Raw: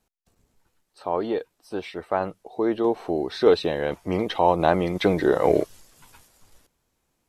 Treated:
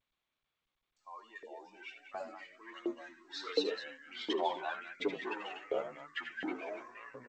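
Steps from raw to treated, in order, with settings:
spectral dynamics exaggerated over time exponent 2
loudspeakers that aren't time-aligned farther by 26 metres −9 dB, 70 metres −10 dB
0:02.78–0:03.24: time-frequency box erased 360–1,800 Hz
flat-topped bell 880 Hz −12.5 dB
soft clipping −16 dBFS, distortion −18 dB
delay with pitch and tempo change per echo 200 ms, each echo −3 semitones, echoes 3
flanger 0.99 Hz, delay 6.8 ms, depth 4.2 ms, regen +3%
auto-filter high-pass saw up 1.4 Hz 490–1,900 Hz
high-shelf EQ 3,100 Hz +3 dB, from 0:04.33 −10 dB
low-pass that shuts in the quiet parts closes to 1,500 Hz, open at −36.5 dBFS
level −1.5 dB
G.722 64 kbit/s 16,000 Hz

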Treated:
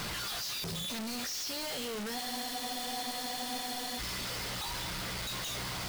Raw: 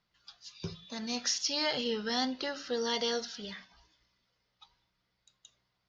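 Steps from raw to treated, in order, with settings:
sign of each sample alone
frozen spectrum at 0:02.19, 1.80 s

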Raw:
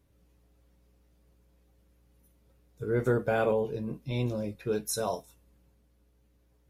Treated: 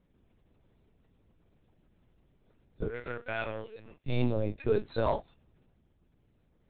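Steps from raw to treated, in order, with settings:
leveller curve on the samples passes 1
0:02.88–0:04.06: resonant band-pass 2,600 Hz, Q 0.97
linear-prediction vocoder at 8 kHz pitch kept

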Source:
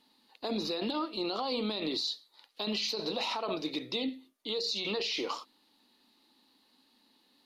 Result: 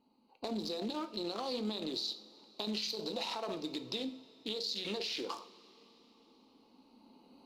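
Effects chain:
adaptive Wiener filter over 25 samples
camcorder AGC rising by 6.2 dB per second
high-shelf EQ 5,800 Hz +8.5 dB
downward compressor 2.5 to 1, threshold −37 dBFS, peak gain reduction 6.5 dB
coupled-rooms reverb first 0.46 s, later 4.4 s, from −18 dB, DRR 8.5 dB

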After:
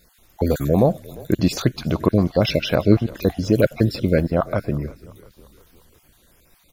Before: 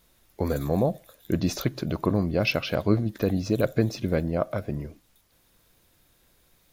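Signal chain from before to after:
time-frequency cells dropped at random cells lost 29%
echo with shifted repeats 349 ms, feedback 54%, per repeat −44 Hz, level −21.5 dB
level +7.5 dB

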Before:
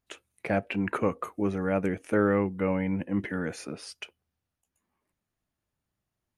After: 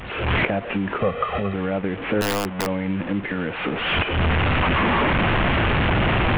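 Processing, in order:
linear delta modulator 16 kbit/s, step −32.5 dBFS
camcorder AGC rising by 54 dB per second
0:01.00–0:01.54: comb filter 1.6 ms, depth 92%
0:02.21–0:02.67: wrap-around overflow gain 18.5 dB
level +2.5 dB

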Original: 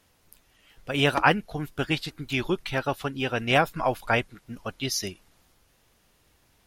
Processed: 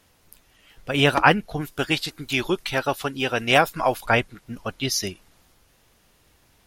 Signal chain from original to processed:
0:01.61–0:04.06: bass and treble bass −5 dB, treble +5 dB
level +4 dB

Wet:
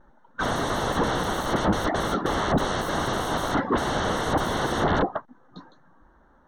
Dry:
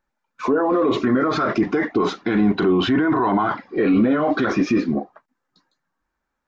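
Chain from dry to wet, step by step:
pitch vibrato 0.68 Hz 35 cents
sine wavefolder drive 19 dB, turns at −15 dBFS
moving average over 18 samples

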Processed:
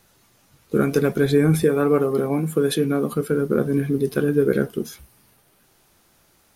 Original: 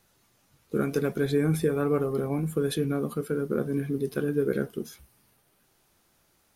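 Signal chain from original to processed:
0:01.63–0:03.13: high-pass filter 160 Hz
level +7.5 dB

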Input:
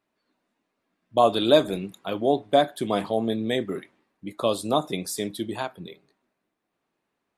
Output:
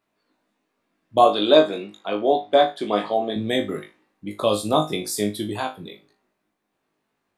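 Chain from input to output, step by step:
0:01.24–0:03.36: band-pass filter 280–5,000 Hz
flutter between parallel walls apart 3.3 metres, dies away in 0.25 s
level +2 dB

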